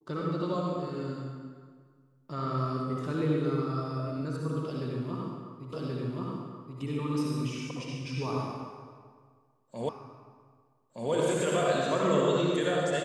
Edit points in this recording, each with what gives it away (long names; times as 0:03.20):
0:05.73: the same again, the last 1.08 s
0:09.89: the same again, the last 1.22 s